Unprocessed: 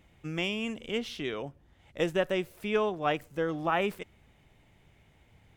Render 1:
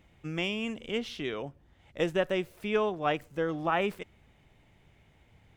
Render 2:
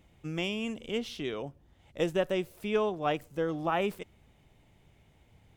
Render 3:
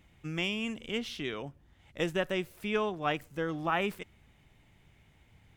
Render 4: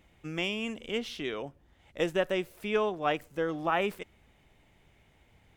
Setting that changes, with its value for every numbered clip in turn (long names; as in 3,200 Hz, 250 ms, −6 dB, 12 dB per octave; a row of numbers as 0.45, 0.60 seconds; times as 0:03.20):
parametric band, centre frequency: 14,000, 1,800, 540, 120 Hertz